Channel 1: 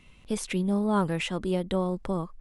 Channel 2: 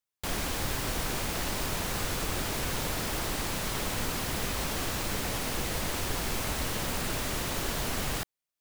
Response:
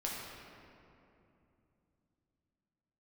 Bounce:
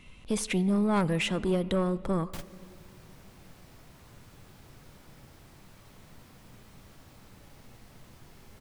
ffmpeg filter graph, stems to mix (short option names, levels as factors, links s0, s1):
-filter_complex "[0:a]asoftclip=type=tanh:threshold=0.075,volume=1.26,asplit=3[s0][s1][s2];[s1]volume=0.119[s3];[1:a]equalizer=f=130:t=o:w=1.6:g=7,adelay=2100,volume=0.398,asplit=2[s4][s5];[s5]volume=0.106[s6];[s2]apad=whole_len=472198[s7];[s4][s7]sidechaingate=range=0.0224:threshold=0.00891:ratio=16:detection=peak[s8];[2:a]atrim=start_sample=2205[s9];[s3][s6]amix=inputs=2:normalize=0[s10];[s10][s9]afir=irnorm=-1:irlink=0[s11];[s0][s8][s11]amix=inputs=3:normalize=0"